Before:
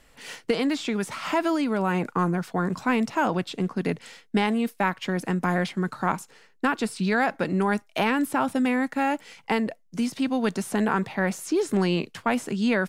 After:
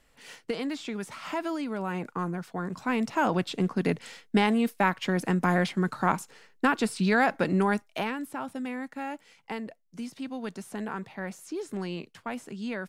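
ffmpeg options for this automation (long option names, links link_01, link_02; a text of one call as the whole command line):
ffmpeg -i in.wav -af "afade=type=in:start_time=2.71:duration=0.73:silence=0.421697,afade=type=out:start_time=7.55:duration=0.63:silence=0.281838" out.wav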